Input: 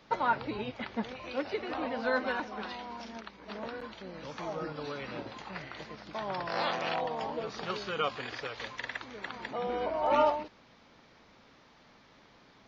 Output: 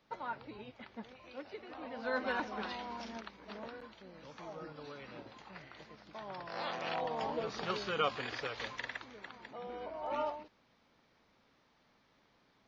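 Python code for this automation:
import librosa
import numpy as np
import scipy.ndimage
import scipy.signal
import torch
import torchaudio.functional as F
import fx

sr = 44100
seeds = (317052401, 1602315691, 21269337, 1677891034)

y = fx.gain(x, sr, db=fx.line((1.76, -12.5), (2.4, -1.0), (3.14, -1.0), (3.94, -9.5), (6.51, -9.5), (7.26, -1.0), (8.7, -1.0), (9.4, -11.0)))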